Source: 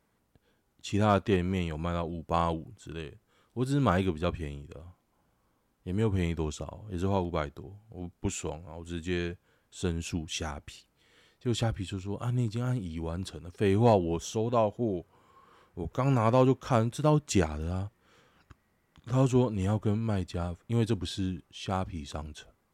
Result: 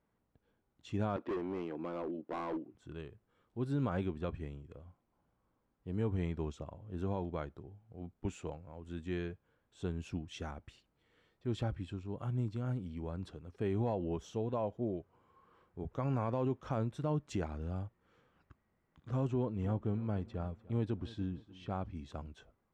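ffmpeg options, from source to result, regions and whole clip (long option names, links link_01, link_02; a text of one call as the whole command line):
ffmpeg -i in.wav -filter_complex "[0:a]asettb=1/sr,asplit=3[link_01][link_02][link_03];[link_01]atrim=end=1.164[link_04];[link_02]atrim=start=1.16:end=2.75,asetpts=PTS-STARTPTS,afade=type=in:duration=0.004:curve=qsin,afade=type=out:start_time=1.586:duration=0.004:curve=qsin,highpass=frequency=310:width_type=q:width=2.8,equalizer=frequency=7700:width=1:gain=-11.5,volume=27.5dB,asoftclip=hard,volume=-27.5dB[link_05];[link_03]atrim=start=2.746[link_06];[link_04][link_05]acrossfade=duration=0.004:curve1=hsin:curve2=qsin[link_07];[link_07][link_06]acrossfade=duration=0.004:curve1=qsin:curve2=hsin,asettb=1/sr,asplit=3[link_08][link_09][link_10];[link_08]atrim=end=19.274[link_11];[link_09]atrim=start=19.27:end=21.86,asetpts=PTS-STARTPTS,afade=type=in:duration=0.004:curve=qsin,afade=type=out:start_time=2.586:duration=0.004:curve=qsin,lowpass=frequency=3600:poles=1,aecho=1:1:297|594|891:0.106|0.0413|0.0161,atrim=end_sample=114219[link_12];[link_10]atrim=start=21.856[link_13];[link_11][link_12]acrossfade=duration=0.004:curve1=hsin:curve2=qsin[link_14];[link_14][link_13]acrossfade=duration=0.004:curve1=qsin:curve2=hsin,lowpass=frequency=1600:poles=1,alimiter=limit=-19.5dB:level=0:latency=1:release=65,volume=-6dB" out.wav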